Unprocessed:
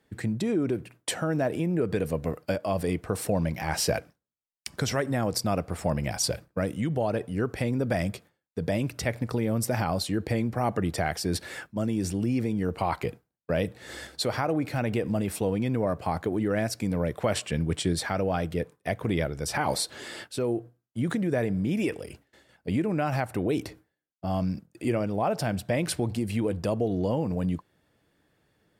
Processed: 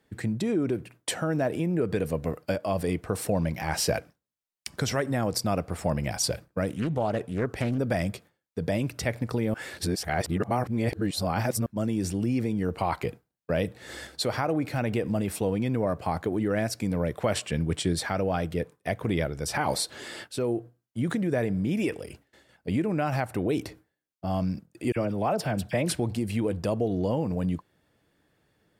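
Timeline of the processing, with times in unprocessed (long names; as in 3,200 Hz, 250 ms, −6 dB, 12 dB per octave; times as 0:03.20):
0:06.69–0:07.78: highs frequency-modulated by the lows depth 0.46 ms
0:09.54–0:11.66: reverse
0:24.92–0:25.95: all-pass dispersion lows, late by 42 ms, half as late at 1,700 Hz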